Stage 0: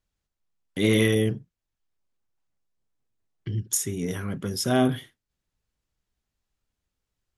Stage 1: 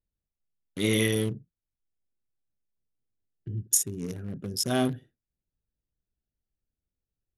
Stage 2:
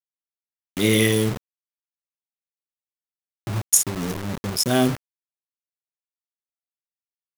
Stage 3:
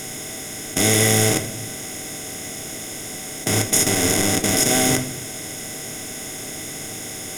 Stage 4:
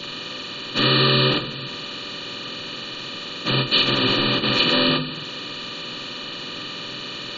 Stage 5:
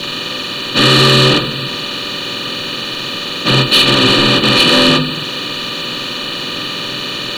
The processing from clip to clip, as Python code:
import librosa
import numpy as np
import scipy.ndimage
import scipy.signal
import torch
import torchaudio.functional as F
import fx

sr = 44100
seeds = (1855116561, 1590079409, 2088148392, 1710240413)

y1 = fx.wiener(x, sr, points=41)
y1 = fx.high_shelf(y1, sr, hz=3200.0, db=9.0)
y1 = y1 * 10.0 ** (-4.5 / 20.0)
y2 = scipy.signal.sosfilt(scipy.signal.butter(2, 52.0, 'highpass', fs=sr, output='sos'), y1)
y2 = fx.quant_dither(y2, sr, seeds[0], bits=6, dither='none')
y2 = y2 * 10.0 ** (6.5 / 20.0)
y3 = fx.bin_compress(y2, sr, power=0.2)
y3 = fx.room_shoebox(y3, sr, seeds[1], volume_m3=110.0, walls='mixed', distance_m=0.49)
y3 = y3 * 10.0 ** (-5.5 / 20.0)
y4 = fx.partial_stretch(y3, sr, pct=75)
y4 = fx.spec_gate(y4, sr, threshold_db=-25, keep='strong')
y5 = fx.leveller(y4, sr, passes=2)
y5 = y5 * 10.0 ** (3.5 / 20.0)